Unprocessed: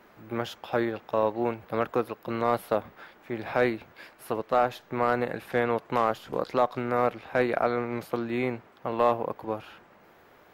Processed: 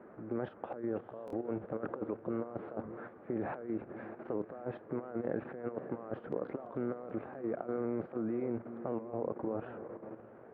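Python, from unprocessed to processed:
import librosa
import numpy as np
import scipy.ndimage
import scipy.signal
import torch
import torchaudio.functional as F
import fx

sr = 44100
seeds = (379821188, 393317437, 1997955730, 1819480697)

p1 = scipy.signal.sosfilt(scipy.signal.butter(4, 1200.0, 'lowpass', fs=sr, output='sos'), x)
p2 = fx.over_compress(p1, sr, threshold_db=-35.0, ratio=-1.0)
p3 = p2 + fx.echo_diffused(p2, sr, ms=589, feedback_pct=42, wet_db=-12, dry=0)
p4 = fx.level_steps(p3, sr, step_db=9)
p5 = fx.highpass(p4, sr, hz=420.0, slope=6)
p6 = fx.peak_eq(p5, sr, hz=950.0, db=-14.5, octaves=1.3)
p7 = fx.buffer_glitch(p6, sr, at_s=(1.26,), block=1024, repeats=2)
p8 = fx.record_warp(p7, sr, rpm=78.0, depth_cents=100.0)
y = p8 * librosa.db_to_amplitude(8.5)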